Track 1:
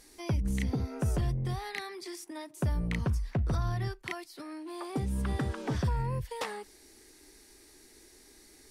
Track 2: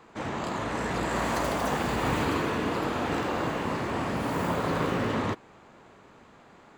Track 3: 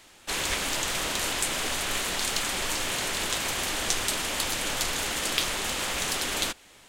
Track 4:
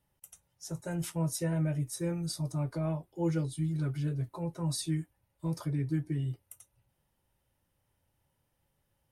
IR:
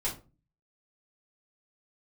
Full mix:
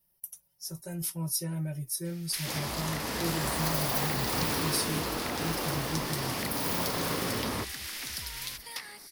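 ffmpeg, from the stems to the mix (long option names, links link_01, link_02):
-filter_complex "[0:a]adelay=2350,volume=-6dB[link_01];[1:a]adelay=2300,volume=-5.5dB[link_02];[2:a]adelay=2050,volume=-14.5dB[link_03];[3:a]aecho=1:1:5.3:0.7,volume=-6.5dB[link_04];[link_01][link_03]amix=inputs=2:normalize=0,equalizer=frequency=125:width_type=o:width=1:gain=-10,equalizer=frequency=500:width_type=o:width=1:gain=-11,equalizer=frequency=2000:width_type=o:width=1:gain=11,equalizer=frequency=4000:width_type=o:width=1:gain=4,equalizer=frequency=8000:width_type=o:width=1:gain=3,acompressor=threshold=-40dB:ratio=6,volume=0dB[link_05];[link_02][link_04][link_05]amix=inputs=3:normalize=0,aexciter=amount=5.2:drive=8.6:freq=10000,equalizer=frequency=5200:width_type=o:width=0.72:gain=13"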